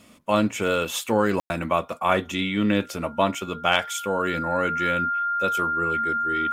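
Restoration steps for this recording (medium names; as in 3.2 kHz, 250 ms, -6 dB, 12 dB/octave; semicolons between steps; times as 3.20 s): clip repair -5.5 dBFS; band-stop 1.4 kHz, Q 30; room tone fill 1.40–1.50 s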